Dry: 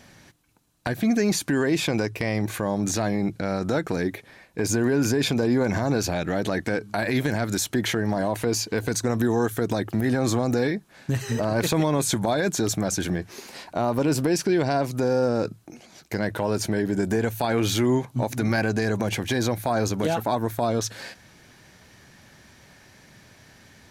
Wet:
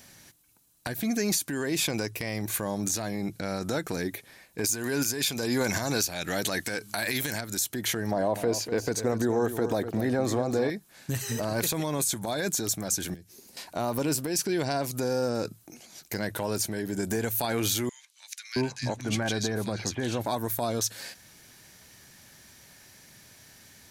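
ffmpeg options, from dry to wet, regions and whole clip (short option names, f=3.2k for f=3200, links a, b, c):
-filter_complex "[0:a]asettb=1/sr,asplit=3[a][b][c];[a]atrim=end=4.644[d];[b]atrim=start=4.64:end=7.41,asetpts=PTS-STARTPTS,afade=t=in:d=0.004:c=qsin,afade=t=out:st=2.766:d=0.004:c=qsin,tiltshelf=f=1.2k:g=-4.5,acontrast=86[e];[c]atrim=start=7.406[f];[d][e]acrossfade=d=0.004:c1=hsin:c2=qsin[g];[g][f]acrossfade=d=0.004:c1=qsin:c2=hsin,asettb=1/sr,asplit=3[h][i][j];[h]atrim=end=8.114[k];[i]atrim=start=8.11:end=10.7,asetpts=PTS-STARTPTS,afade=t=in:d=0.004:c=qsin,afade=t=out:st=2.586:d=0.004:c=qsin,lowpass=f=2.6k:p=1,equalizer=f=550:t=o:w=1.5:g=7,aecho=1:1:248:0.299,atrim=end_sample=114219[l];[j]atrim=start=10.696[m];[k][l]acrossfade=d=0.004:c1=hsin:c2=qsin[n];[n][m]acrossfade=d=0.004:c1=qsin:c2=hsin,asettb=1/sr,asplit=3[o][p][q];[o]atrim=end=13.144[r];[p]atrim=start=13.14:end=13.57,asetpts=PTS-STARTPTS,afade=t=in:d=0.004:c=qsin,afade=t=out:st=0.426:d=0.004:c=qsin,equalizer=f=1.1k:t=o:w=2.7:g=-14,acrossover=split=180|1400[s][t][u];[s]acompressor=threshold=-43dB:ratio=4[v];[t]acompressor=threshold=-42dB:ratio=4[w];[u]acompressor=threshold=-58dB:ratio=4[x];[v][w][x]amix=inputs=3:normalize=0[y];[q]atrim=start=13.566[z];[r][y]acrossfade=d=0.004:c1=hsin:c2=qsin[aa];[aa][z]acrossfade=d=0.004:c1=qsin:c2=hsin,asettb=1/sr,asplit=3[ab][ac][ad];[ab]atrim=end=17.894[ae];[ac]atrim=start=17.89:end=20.26,asetpts=PTS-STARTPTS,afade=t=in:d=0.004:c=qsin,afade=t=out:st=2.366:d=0.004:c=qsin,lowpass=6k,acrossover=split=1900[af][ag];[af]adelay=670[ah];[ah][ag]amix=inputs=2:normalize=0,atrim=end_sample=104517[ai];[ad]atrim=start=20.256[aj];[ae][ai]acrossfade=d=0.004:c1=hsin:c2=qsin[ak];[ak][aj]acrossfade=d=0.004:c1=qsin:c2=hsin,aemphasis=mode=production:type=75kf,alimiter=limit=-9.5dB:level=0:latency=1:release=456,volume=-6dB"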